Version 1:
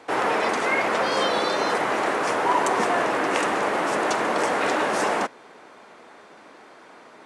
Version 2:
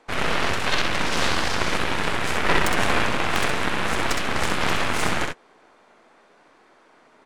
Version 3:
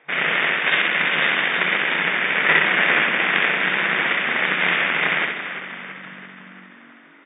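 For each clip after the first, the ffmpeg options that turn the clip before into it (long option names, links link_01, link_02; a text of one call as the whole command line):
ffmpeg -i in.wav -filter_complex "[0:a]aeval=exprs='0.501*(cos(1*acos(clip(val(0)/0.501,-1,1)))-cos(1*PI/2))+0.0398*(cos(3*acos(clip(val(0)/0.501,-1,1)))-cos(3*PI/2))+0.126*(cos(6*acos(clip(val(0)/0.501,-1,1)))-cos(6*PI/2))+0.0794*(cos(7*acos(clip(val(0)/0.501,-1,1)))-cos(7*PI/2))':channel_layout=same,asplit=2[link_01][link_02];[link_02]aecho=0:1:64|76:0.596|0.133[link_03];[link_01][link_03]amix=inputs=2:normalize=0" out.wav
ffmpeg -i in.wav -filter_complex "[0:a]equalizer=frequency=250:width_type=o:width=1:gain=-5,equalizer=frequency=1000:width_type=o:width=1:gain=-5,equalizer=frequency=2000:width_type=o:width=1:gain=11,asplit=8[link_01][link_02][link_03][link_04][link_05][link_06][link_07][link_08];[link_02]adelay=337,afreqshift=-47,volume=-10dB[link_09];[link_03]adelay=674,afreqshift=-94,volume=-14.9dB[link_10];[link_04]adelay=1011,afreqshift=-141,volume=-19.8dB[link_11];[link_05]adelay=1348,afreqshift=-188,volume=-24.6dB[link_12];[link_06]adelay=1685,afreqshift=-235,volume=-29.5dB[link_13];[link_07]adelay=2022,afreqshift=-282,volume=-34.4dB[link_14];[link_08]adelay=2359,afreqshift=-329,volume=-39.3dB[link_15];[link_01][link_09][link_10][link_11][link_12][link_13][link_14][link_15]amix=inputs=8:normalize=0,afftfilt=real='re*between(b*sr/4096,150,3700)':imag='im*between(b*sr/4096,150,3700)':win_size=4096:overlap=0.75" out.wav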